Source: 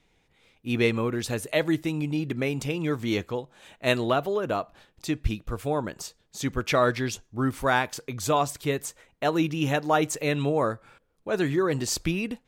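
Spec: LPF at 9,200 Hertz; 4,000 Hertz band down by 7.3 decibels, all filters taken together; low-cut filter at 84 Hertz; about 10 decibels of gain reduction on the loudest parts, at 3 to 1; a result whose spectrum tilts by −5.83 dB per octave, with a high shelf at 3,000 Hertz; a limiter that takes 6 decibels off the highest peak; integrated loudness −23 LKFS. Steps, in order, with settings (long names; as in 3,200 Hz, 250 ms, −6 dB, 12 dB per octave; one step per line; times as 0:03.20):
high-pass filter 84 Hz
low-pass filter 9,200 Hz
high-shelf EQ 3,000 Hz −6.5 dB
parametric band 4,000 Hz −4.5 dB
downward compressor 3 to 1, threshold −33 dBFS
level +14.5 dB
brickwall limiter −11.5 dBFS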